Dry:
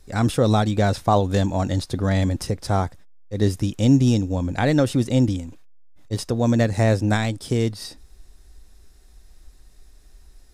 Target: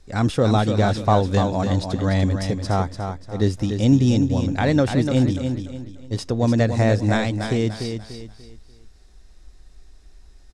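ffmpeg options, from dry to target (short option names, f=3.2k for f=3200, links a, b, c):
-filter_complex "[0:a]lowpass=7.1k,asplit=2[a][b];[b]aecho=0:1:293|586|879|1172:0.447|0.152|0.0516|0.0176[c];[a][c]amix=inputs=2:normalize=0"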